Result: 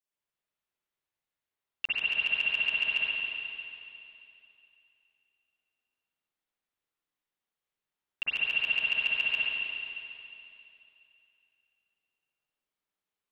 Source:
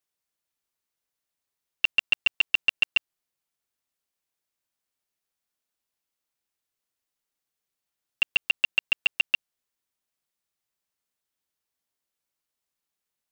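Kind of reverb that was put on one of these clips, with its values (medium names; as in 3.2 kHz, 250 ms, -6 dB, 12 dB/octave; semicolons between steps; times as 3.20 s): spring tank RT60 2.8 s, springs 45/53/58 ms, chirp 60 ms, DRR -9 dB; trim -10.5 dB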